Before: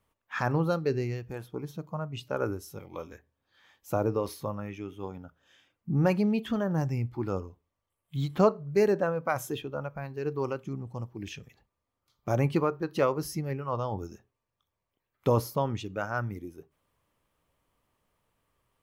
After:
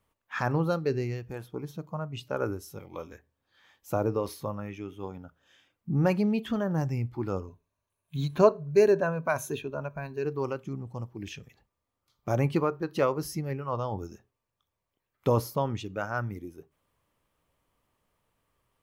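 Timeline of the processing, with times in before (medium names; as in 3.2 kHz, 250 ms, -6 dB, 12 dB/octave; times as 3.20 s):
7.47–10.25 s: rippled EQ curve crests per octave 1.5, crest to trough 9 dB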